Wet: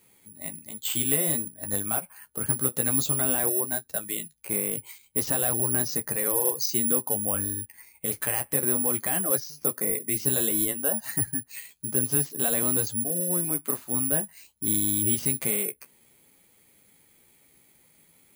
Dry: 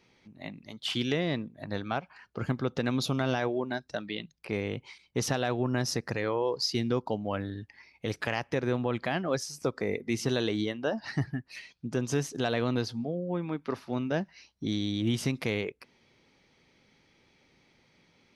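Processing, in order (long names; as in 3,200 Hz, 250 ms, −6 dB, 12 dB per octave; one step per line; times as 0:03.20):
flanger 0.54 Hz, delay 9.2 ms, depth 6.5 ms, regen −28%
in parallel at −9 dB: soft clipping −32.5 dBFS, distortion −9 dB
on the sum: bad sample-rate conversion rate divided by 4×, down filtered, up zero stuff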